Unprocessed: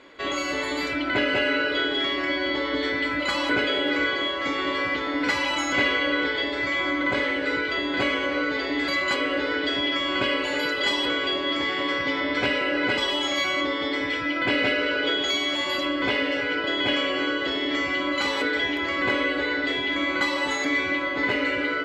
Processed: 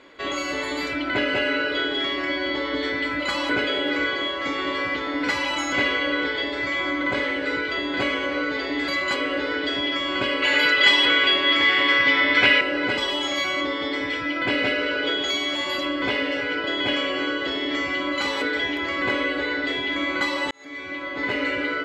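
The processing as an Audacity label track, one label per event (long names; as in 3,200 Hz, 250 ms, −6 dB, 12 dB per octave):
10.420000	12.610000	parametric band 2,300 Hz +10.5 dB 1.9 octaves
20.510000	21.440000	fade in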